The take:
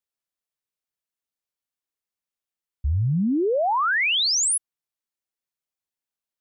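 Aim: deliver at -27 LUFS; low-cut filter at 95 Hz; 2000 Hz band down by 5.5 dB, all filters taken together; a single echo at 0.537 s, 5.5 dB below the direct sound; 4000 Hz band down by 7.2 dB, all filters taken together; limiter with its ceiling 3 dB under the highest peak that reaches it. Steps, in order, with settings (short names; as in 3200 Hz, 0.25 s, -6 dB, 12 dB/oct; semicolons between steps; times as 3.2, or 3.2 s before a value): HPF 95 Hz; bell 2000 Hz -5 dB; bell 4000 Hz -8 dB; limiter -21.5 dBFS; echo 0.537 s -5.5 dB; gain -2 dB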